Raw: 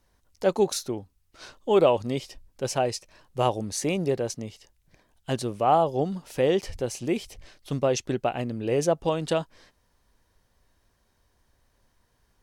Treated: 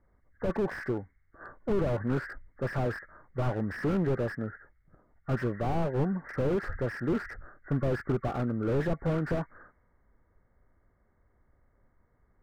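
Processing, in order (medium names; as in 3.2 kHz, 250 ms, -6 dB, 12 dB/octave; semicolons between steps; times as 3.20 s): knee-point frequency compression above 1.1 kHz 4:1; level-controlled noise filter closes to 740 Hz, open at -20 dBFS; slew-rate limiter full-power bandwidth 18 Hz; trim +1 dB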